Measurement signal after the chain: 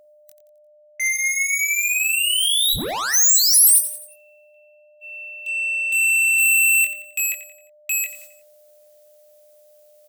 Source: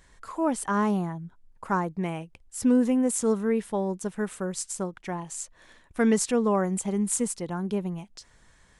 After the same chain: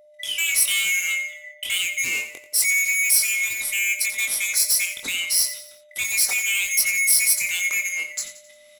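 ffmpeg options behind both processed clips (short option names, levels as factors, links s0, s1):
-filter_complex "[0:a]afftfilt=real='real(if(lt(b,920),b+92*(1-2*mod(floor(b/92),2)),b),0)':imag='imag(if(lt(b,920),b+92*(1-2*mod(floor(b/92),2)),b),0)':win_size=2048:overlap=0.75,agate=range=0.0178:threshold=0.00316:ratio=16:detection=peak,equalizer=f=110:t=o:w=0.33:g=-6.5,alimiter=limit=0.0841:level=0:latency=1:release=119,areverse,acompressor=mode=upward:threshold=0.00355:ratio=2.5,areverse,aeval=exprs='val(0)+0.00112*sin(2*PI*600*n/s)':c=same,asoftclip=type=tanh:threshold=0.0211,crystalizer=i=3.5:c=0,asplit=2[s0][s1];[s1]adelay=22,volume=0.562[s2];[s0][s2]amix=inputs=2:normalize=0,aecho=1:1:88|176|264|352:0.237|0.104|0.0459|0.0202,volume=2.11"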